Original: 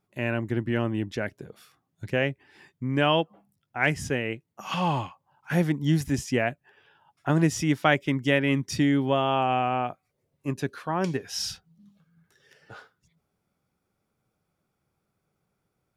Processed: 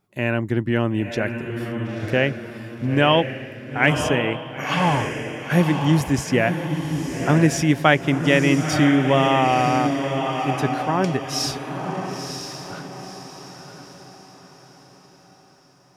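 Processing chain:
feedback delay with all-pass diffusion 980 ms, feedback 43%, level −6 dB
level +5.5 dB

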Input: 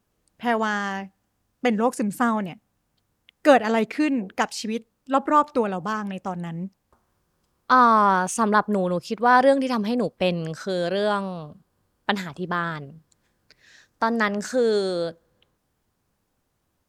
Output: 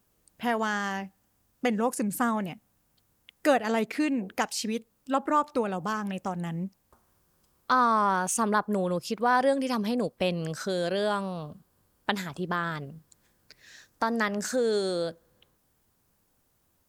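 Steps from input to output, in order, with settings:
high-shelf EQ 8,700 Hz +11.5 dB
downward compressor 1.5 to 1, threshold −32 dBFS, peak gain reduction 8 dB

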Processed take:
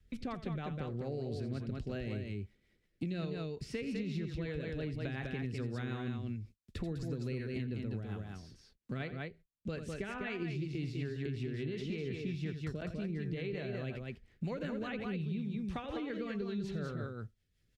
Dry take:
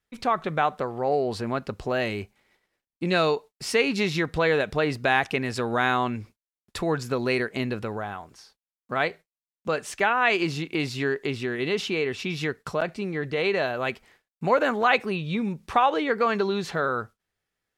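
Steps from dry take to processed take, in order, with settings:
guitar amp tone stack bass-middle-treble 10-0-1
loudspeakers that aren't time-aligned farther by 29 metres −11 dB, 69 metres −5 dB
rotating-speaker cabinet horn 5.5 Hz
downward compressor, threshold −46 dBFS, peak gain reduction 7 dB
high-shelf EQ 5,300 Hz −12 dB
multiband upward and downward compressor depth 70%
level +12 dB

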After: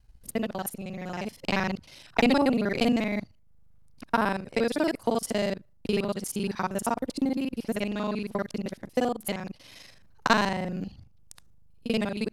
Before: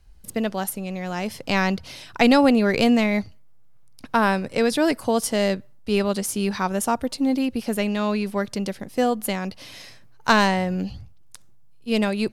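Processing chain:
reversed piece by piece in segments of 39 ms
transient designer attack +4 dB, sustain −5 dB
level −6.5 dB

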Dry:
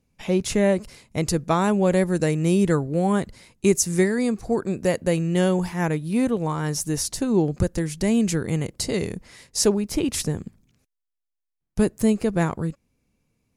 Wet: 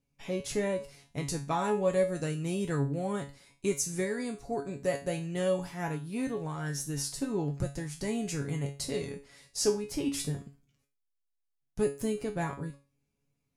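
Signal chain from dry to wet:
tuned comb filter 140 Hz, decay 0.32 s, harmonics all, mix 90%
level +1.5 dB

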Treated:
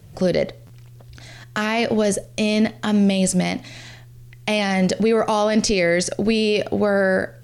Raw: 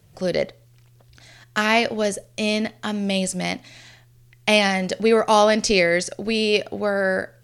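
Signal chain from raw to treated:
low-shelf EQ 480 Hz +5.5 dB
brickwall limiter −14.5 dBFS, peak gain reduction 12 dB
buffer that repeats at 0:00.66, samples 512, times 2
level +5 dB

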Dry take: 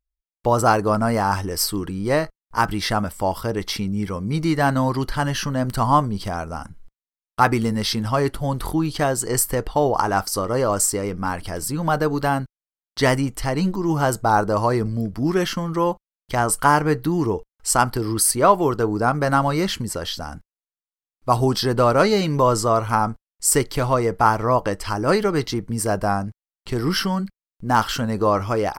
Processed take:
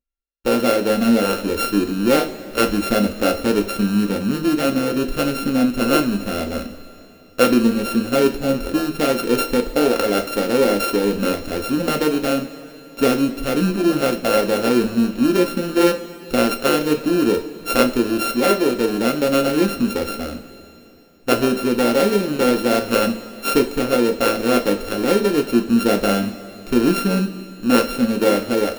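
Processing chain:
samples sorted by size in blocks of 32 samples
octave-band graphic EQ 125/250/500/1,000/8,000 Hz −12/+10/+8/−11/−6 dB
speech leveller within 3 dB 0.5 s
coupled-rooms reverb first 0.28 s, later 3.2 s, from −18 dB, DRR 4 dB
level −1 dB

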